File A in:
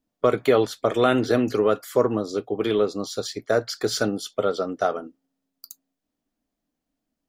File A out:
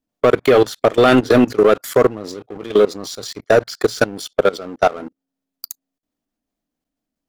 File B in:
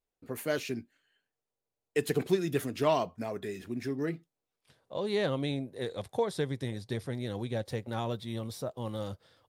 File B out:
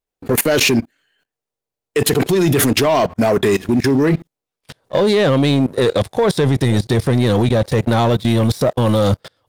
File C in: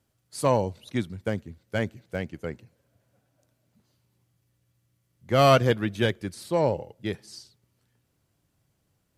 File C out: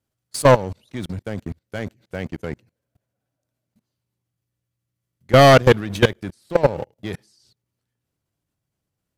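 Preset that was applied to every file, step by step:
one-sided wavefolder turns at -11 dBFS; level held to a coarse grid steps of 21 dB; waveshaping leveller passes 2; normalise loudness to -16 LUFS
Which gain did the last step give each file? +6.0 dB, +23.0 dB, +7.5 dB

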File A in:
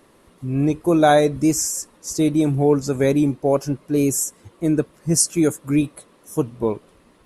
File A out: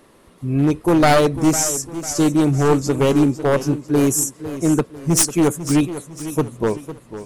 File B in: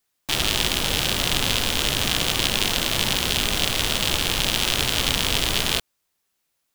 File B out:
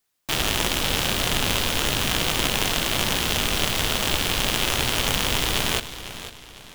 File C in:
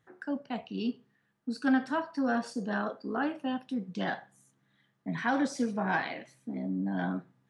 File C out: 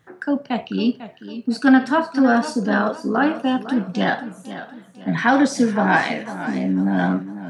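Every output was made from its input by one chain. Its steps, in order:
one-sided wavefolder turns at -13.5 dBFS; modulated delay 501 ms, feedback 41%, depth 108 cents, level -13 dB; peak normalisation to -2 dBFS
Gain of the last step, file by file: +3.0 dB, 0.0 dB, +12.5 dB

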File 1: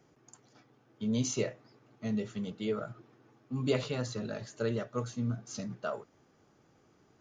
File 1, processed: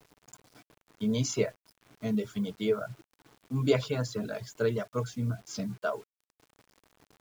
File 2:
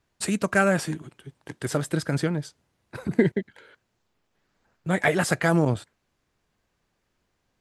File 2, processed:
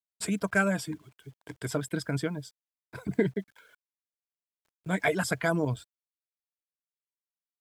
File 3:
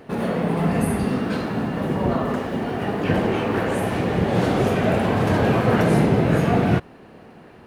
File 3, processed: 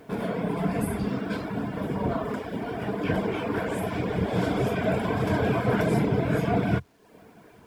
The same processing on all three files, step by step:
reverb removal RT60 0.64 s; rippled EQ curve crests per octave 1.7, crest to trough 7 dB; bit crusher 10-bit; peak normalisation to -12 dBFS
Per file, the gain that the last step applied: +3.5 dB, -5.5 dB, -5.0 dB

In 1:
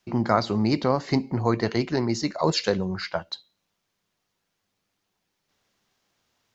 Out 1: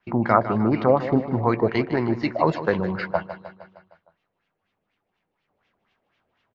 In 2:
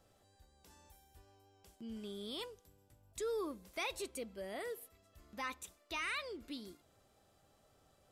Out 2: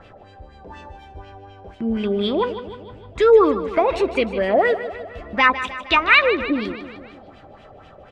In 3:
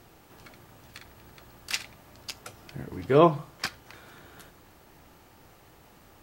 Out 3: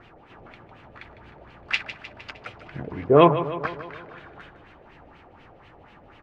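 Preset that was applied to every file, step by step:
LFO low-pass sine 4.1 Hz 570–2900 Hz; on a send: feedback delay 154 ms, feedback 58%, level -12.5 dB; on the sum: peak normalisation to -2 dBFS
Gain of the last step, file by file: +1.0 dB, +23.0 dB, +3.0 dB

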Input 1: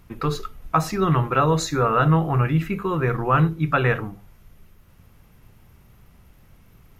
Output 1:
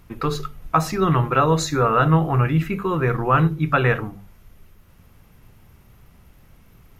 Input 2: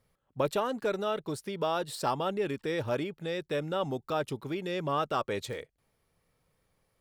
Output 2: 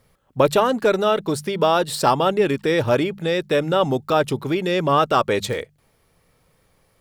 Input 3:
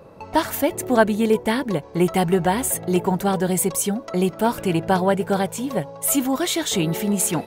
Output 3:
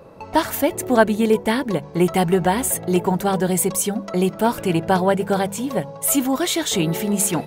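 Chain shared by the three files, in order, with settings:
de-hum 49.63 Hz, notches 4; normalise loudness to -20 LUFS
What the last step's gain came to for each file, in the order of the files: +1.5 dB, +12.5 dB, +1.5 dB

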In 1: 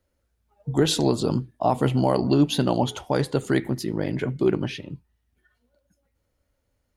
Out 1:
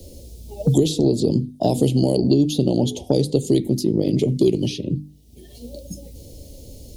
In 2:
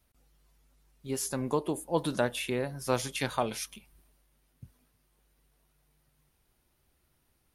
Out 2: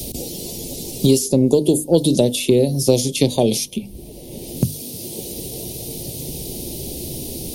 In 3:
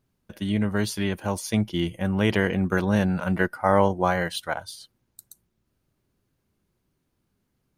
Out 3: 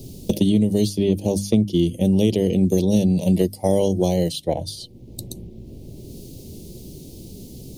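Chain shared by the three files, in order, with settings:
Chebyshev band-stop 430–4400 Hz, order 2; hum notches 50/100/150/200/250/300 Hz; three bands compressed up and down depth 100%; normalise loudness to -20 LUFS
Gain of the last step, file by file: +5.5 dB, +18.5 dB, +7.5 dB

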